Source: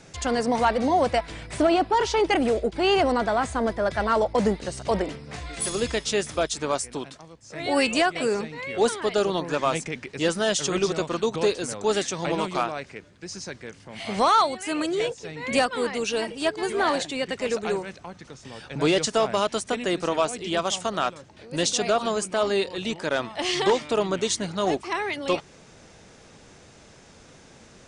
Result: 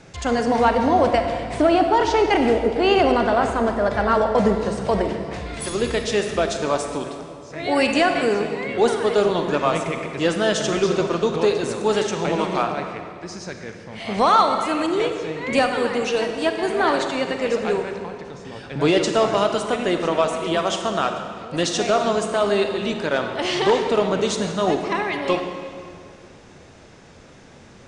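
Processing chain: high shelf 5300 Hz -10 dB; on a send: reverb RT60 2.2 s, pre-delay 32 ms, DRR 5 dB; on the sum: gain +3.5 dB

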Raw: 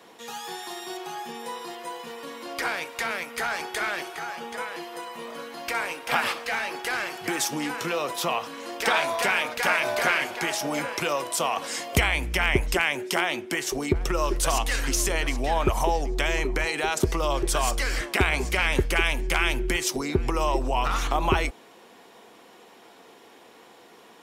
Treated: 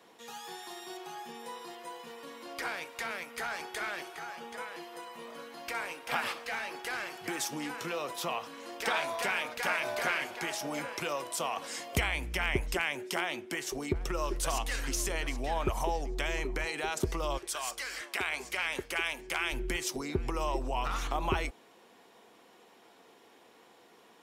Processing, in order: 17.37–19.51 HPF 1400 Hz -> 360 Hz 6 dB/oct; gain -8 dB

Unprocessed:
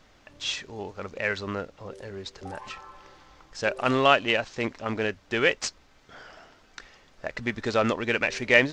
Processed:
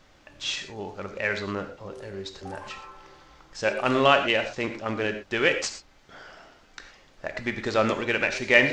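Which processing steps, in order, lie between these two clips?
non-linear reverb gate 0.14 s flat, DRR 6.5 dB

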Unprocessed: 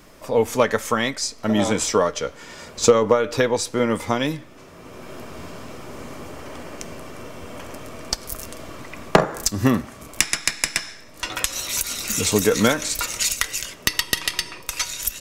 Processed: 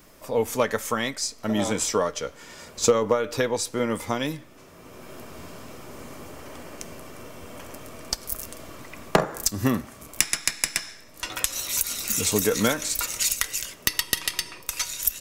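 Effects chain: high shelf 10000 Hz +10.5 dB; gain -5 dB

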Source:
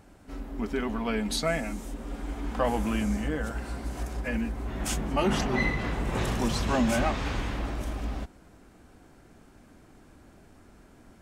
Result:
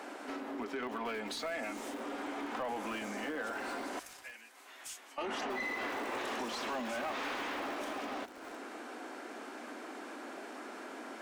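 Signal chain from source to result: steep high-pass 240 Hz 48 dB/oct; limiter -24.5 dBFS, peak gain reduction 9.5 dB; compressor 3:1, threshold -52 dBFS, peak gain reduction 16.5 dB; 3.99–5.18 differentiator; overdrive pedal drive 13 dB, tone 2800 Hz, clips at -37 dBFS; lo-fi delay 0.32 s, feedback 35%, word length 8-bit, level -12.5 dB; gain +9 dB

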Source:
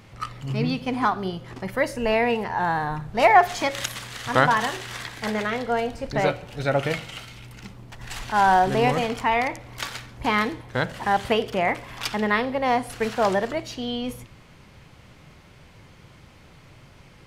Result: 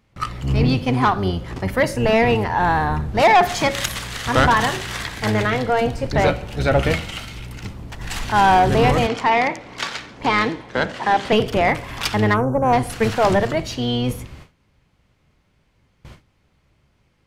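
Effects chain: octaver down 1 oct, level 0 dB; gate with hold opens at -35 dBFS; 9.07–11.33 three-band isolator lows -18 dB, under 180 Hz, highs -19 dB, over 7600 Hz; 12.34–12.73 spectral delete 1600–5600 Hz; soft clip -14.5 dBFS, distortion -13 dB; gain +6.5 dB

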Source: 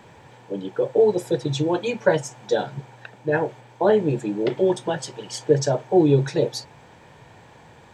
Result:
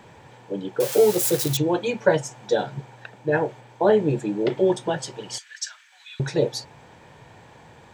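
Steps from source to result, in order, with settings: 0.8–1.57 switching spikes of -16 dBFS; 5.38–6.2 steep high-pass 1500 Hz 36 dB/oct

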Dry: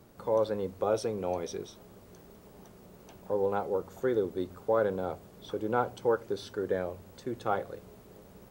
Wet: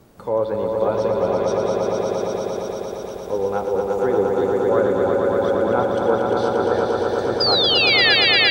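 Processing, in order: treble ducked by the level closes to 2800 Hz, closed at -23.5 dBFS; painted sound fall, 7.4–8.15, 1600–5000 Hz -25 dBFS; swelling echo 0.116 s, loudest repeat 5, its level -4 dB; gain +6 dB

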